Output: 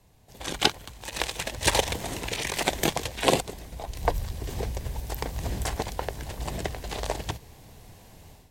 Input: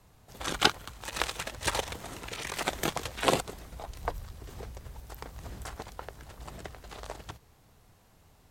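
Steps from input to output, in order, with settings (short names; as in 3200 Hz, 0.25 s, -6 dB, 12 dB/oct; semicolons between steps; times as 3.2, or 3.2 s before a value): AGC gain up to 12 dB; bell 1300 Hz -10.5 dB 0.43 oct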